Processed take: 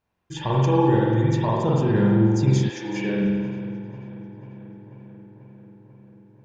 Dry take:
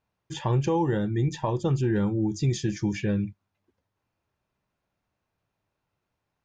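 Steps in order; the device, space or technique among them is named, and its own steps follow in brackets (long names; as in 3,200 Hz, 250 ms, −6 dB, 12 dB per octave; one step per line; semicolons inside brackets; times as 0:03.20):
dub delay into a spring reverb (feedback echo with a low-pass in the loop 490 ms, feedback 73%, low-pass 3,300 Hz, level −18 dB; spring reverb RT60 1.7 s, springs 45 ms, chirp 70 ms, DRR −4.5 dB)
0:02.68–0:03.23: high-pass filter 630 Hz → 150 Hz 12 dB per octave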